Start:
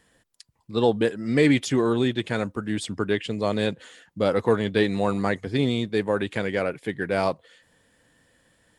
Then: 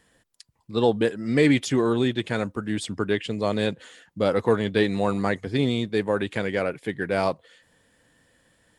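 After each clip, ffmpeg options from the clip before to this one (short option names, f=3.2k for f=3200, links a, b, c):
-af anull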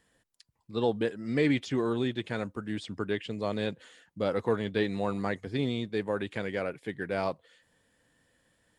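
-filter_complex "[0:a]acrossover=split=5800[a][b];[b]acompressor=threshold=-54dB:ratio=4:attack=1:release=60[c];[a][c]amix=inputs=2:normalize=0,volume=-7dB"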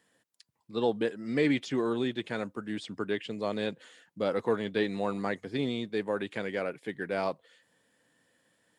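-af "highpass=160"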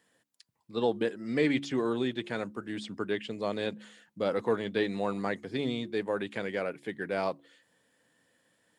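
-af "bandreject=f=70.39:t=h:w=4,bandreject=f=140.78:t=h:w=4,bandreject=f=211.17:t=h:w=4,bandreject=f=281.56:t=h:w=4,bandreject=f=351.95:t=h:w=4"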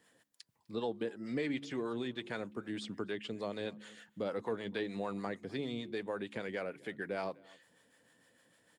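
-filter_complex "[0:a]acompressor=threshold=-43dB:ratio=2,asplit=2[a][b];[b]adelay=250.7,volume=-24dB,highshelf=f=4k:g=-5.64[c];[a][c]amix=inputs=2:normalize=0,acrossover=split=560[d][e];[d]aeval=exprs='val(0)*(1-0.5/2+0.5/2*cos(2*PI*6.6*n/s))':c=same[f];[e]aeval=exprs='val(0)*(1-0.5/2-0.5/2*cos(2*PI*6.6*n/s))':c=same[g];[f][g]amix=inputs=2:normalize=0,volume=4dB"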